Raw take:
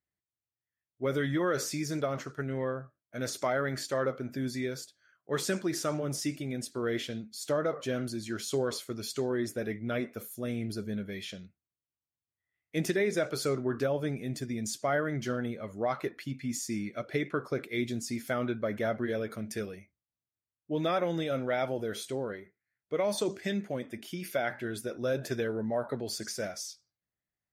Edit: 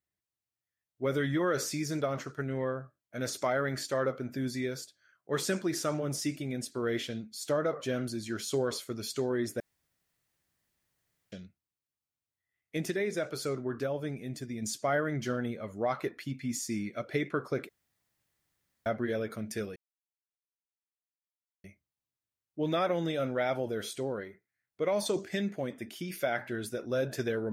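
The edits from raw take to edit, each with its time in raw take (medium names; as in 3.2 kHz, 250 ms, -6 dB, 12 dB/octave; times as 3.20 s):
9.60–11.32 s: room tone
12.77–14.62 s: gain -3.5 dB
17.69–18.86 s: room tone
19.76 s: insert silence 1.88 s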